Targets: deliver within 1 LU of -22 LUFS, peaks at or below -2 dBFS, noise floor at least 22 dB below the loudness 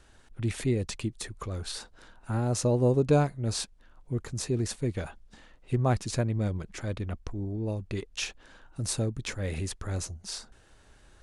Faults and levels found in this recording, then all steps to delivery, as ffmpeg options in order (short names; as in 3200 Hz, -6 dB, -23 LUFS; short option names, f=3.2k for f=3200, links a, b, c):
loudness -31.0 LUFS; peak -11.5 dBFS; loudness target -22.0 LUFS
-> -af "volume=9dB"